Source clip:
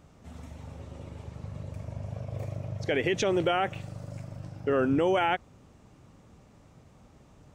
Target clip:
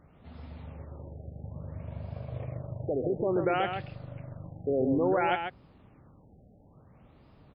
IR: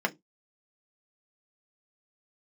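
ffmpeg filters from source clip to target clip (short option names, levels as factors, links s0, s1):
-af "aecho=1:1:134:0.473,afftfilt=real='re*lt(b*sr/1024,770*pow(5300/770,0.5+0.5*sin(2*PI*0.58*pts/sr)))':imag='im*lt(b*sr/1024,770*pow(5300/770,0.5+0.5*sin(2*PI*0.58*pts/sr)))':win_size=1024:overlap=0.75,volume=0.794"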